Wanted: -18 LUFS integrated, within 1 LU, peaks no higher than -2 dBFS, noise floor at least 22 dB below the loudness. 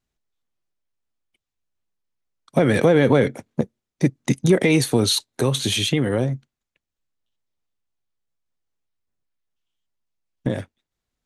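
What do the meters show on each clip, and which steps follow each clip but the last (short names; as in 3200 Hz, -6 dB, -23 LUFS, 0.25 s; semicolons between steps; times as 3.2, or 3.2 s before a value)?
loudness -20.5 LUFS; peak -5.0 dBFS; loudness target -18.0 LUFS
-> gain +2.5 dB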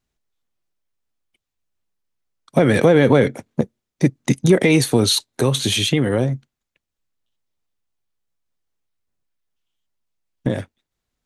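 loudness -18.0 LUFS; peak -2.5 dBFS; noise floor -82 dBFS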